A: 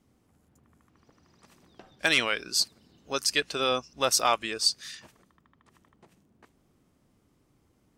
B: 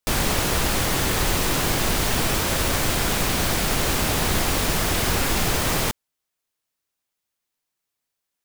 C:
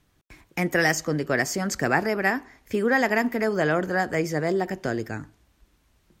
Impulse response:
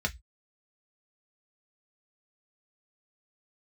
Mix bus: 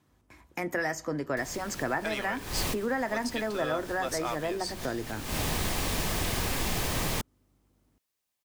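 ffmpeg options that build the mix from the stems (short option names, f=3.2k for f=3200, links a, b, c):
-filter_complex "[0:a]aeval=exprs='val(0)+0.001*(sin(2*PI*50*n/s)+sin(2*PI*2*50*n/s)/2+sin(2*PI*3*50*n/s)/3+sin(2*PI*4*50*n/s)/4+sin(2*PI*5*50*n/s)/5)':c=same,volume=-5dB,asplit=2[a][b];[b]volume=-19.5dB[c];[1:a]bandreject=f=1.4k:w=9.5,acrossover=split=280|620|6600[d][e][f][g];[d]acompressor=threshold=-29dB:ratio=4[h];[e]acompressor=threshold=-41dB:ratio=4[i];[f]acompressor=threshold=-33dB:ratio=4[j];[g]acompressor=threshold=-36dB:ratio=4[k];[h][i][j][k]amix=inputs=4:normalize=0,adelay=1300,volume=-1dB[l];[2:a]equalizer=f=1k:t=o:w=0.37:g=6,volume=-5dB,asplit=3[m][n][o];[n]volume=-17dB[p];[o]apad=whole_len=429711[q];[l][q]sidechaincompress=threshold=-48dB:ratio=5:attack=45:release=171[r];[a][m]amix=inputs=2:normalize=0,highpass=190,acompressor=threshold=-29dB:ratio=5,volume=0dB[s];[3:a]atrim=start_sample=2205[t];[c][p]amix=inputs=2:normalize=0[u];[u][t]afir=irnorm=-1:irlink=0[v];[r][s][v]amix=inputs=3:normalize=0"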